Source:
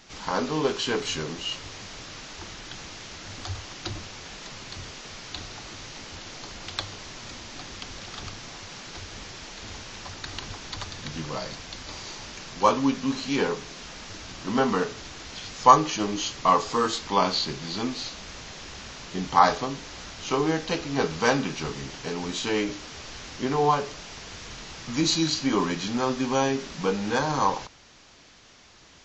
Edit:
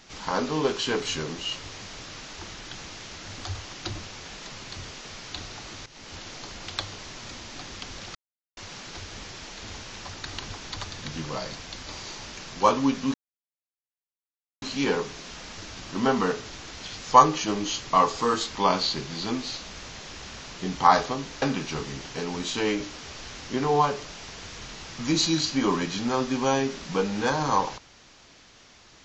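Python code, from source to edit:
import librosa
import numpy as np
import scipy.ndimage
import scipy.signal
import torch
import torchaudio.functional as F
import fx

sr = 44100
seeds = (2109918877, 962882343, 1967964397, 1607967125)

y = fx.edit(x, sr, fx.fade_in_from(start_s=5.86, length_s=0.29, floor_db=-14.5),
    fx.silence(start_s=8.15, length_s=0.42),
    fx.insert_silence(at_s=13.14, length_s=1.48),
    fx.cut(start_s=19.94, length_s=1.37), tone=tone)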